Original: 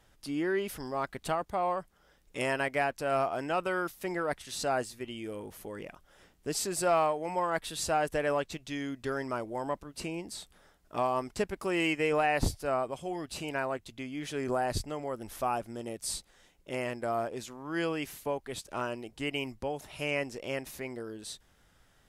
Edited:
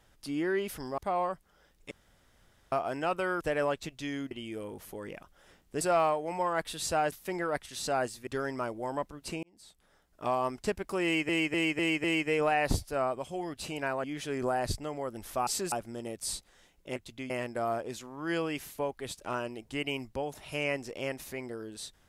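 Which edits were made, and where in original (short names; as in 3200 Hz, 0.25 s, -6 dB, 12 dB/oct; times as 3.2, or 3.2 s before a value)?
0.98–1.45 cut
2.38–3.19 room tone
3.88–5.03 swap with 8.09–8.99
6.53–6.78 move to 15.53
10.15–11.07 fade in linear
11.76–12.01 loop, 5 plays
13.76–14.1 move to 16.77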